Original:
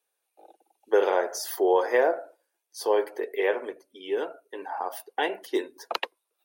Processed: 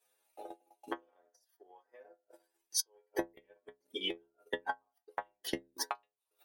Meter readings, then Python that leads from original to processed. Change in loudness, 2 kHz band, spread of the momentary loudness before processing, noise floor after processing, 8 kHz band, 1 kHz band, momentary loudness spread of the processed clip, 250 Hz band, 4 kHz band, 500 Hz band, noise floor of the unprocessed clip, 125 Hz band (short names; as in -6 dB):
-12.5 dB, -12.0 dB, 14 LU, under -85 dBFS, 0.0 dB, -14.0 dB, 24 LU, -11.0 dB, -2.5 dB, -20.5 dB, -81 dBFS, n/a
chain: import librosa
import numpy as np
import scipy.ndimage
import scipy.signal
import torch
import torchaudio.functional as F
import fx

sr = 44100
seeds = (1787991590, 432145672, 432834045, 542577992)

y = fx.gate_flip(x, sr, shuts_db=-27.0, range_db=-41)
y = fx.stiff_resonator(y, sr, f0_hz=62.0, decay_s=0.5, stiffness=0.008)
y = fx.transient(y, sr, attack_db=8, sustain_db=-11)
y = F.gain(torch.from_numpy(y), 13.0).numpy()